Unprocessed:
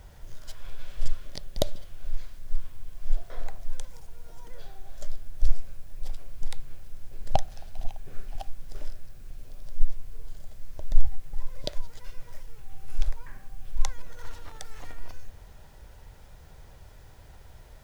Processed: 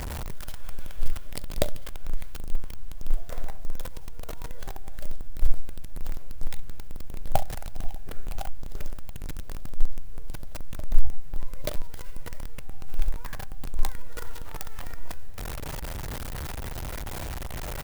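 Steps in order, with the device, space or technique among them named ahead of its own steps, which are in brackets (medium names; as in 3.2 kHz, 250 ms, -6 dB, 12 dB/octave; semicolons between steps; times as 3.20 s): early reflections 15 ms -15 dB, 40 ms -16.5 dB, 67 ms -17.5 dB; early CD player with a faulty converter (jump at every zero crossing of -28 dBFS; sampling jitter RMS 0.046 ms)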